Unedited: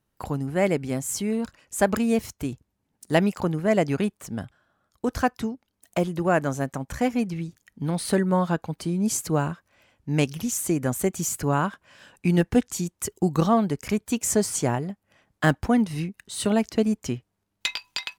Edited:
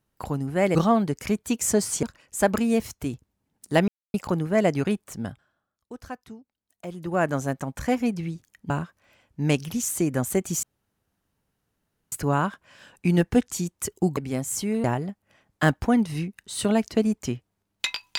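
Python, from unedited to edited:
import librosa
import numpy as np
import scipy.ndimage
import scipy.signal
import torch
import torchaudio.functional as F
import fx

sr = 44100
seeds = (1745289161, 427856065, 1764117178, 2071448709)

y = fx.edit(x, sr, fx.swap(start_s=0.75, length_s=0.67, other_s=13.37, other_length_s=1.28),
    fx.insert_silence(at_s=3.27, length_s=0.26),
    fx.fade_down_up(start_s=4.37, length_s=2.08, db=-14.0, fade_s=0.47),
    fx.cut(start_s=7.83, length_s=1.56),
    fx.insert_room_tone(at_s=11.32, length_s=1.49), tone=tone)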